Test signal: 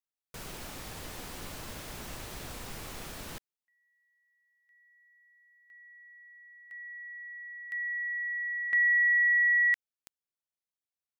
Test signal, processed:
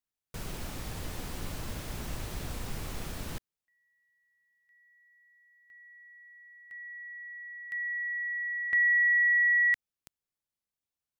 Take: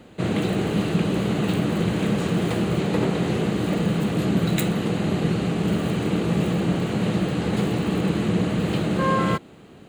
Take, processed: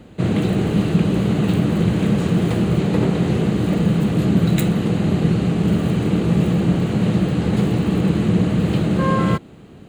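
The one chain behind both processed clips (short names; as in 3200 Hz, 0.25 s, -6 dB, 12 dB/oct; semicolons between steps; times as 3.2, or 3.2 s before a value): low shelf 240 Hz +9 dB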